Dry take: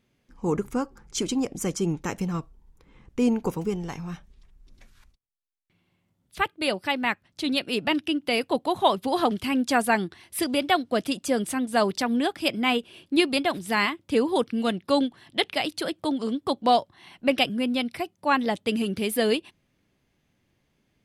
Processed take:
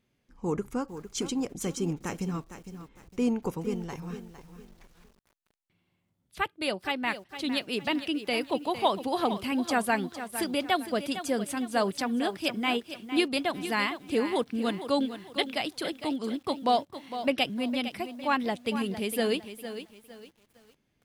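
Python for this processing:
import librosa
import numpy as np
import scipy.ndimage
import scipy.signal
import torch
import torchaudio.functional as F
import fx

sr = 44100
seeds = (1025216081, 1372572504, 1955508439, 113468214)

y = fx.echo_crushed(x, sr, ms=457, feedback_pct=35, bits=8, wet_db=-11)
y = y * 10.0 ** (-4.5 / 20.0)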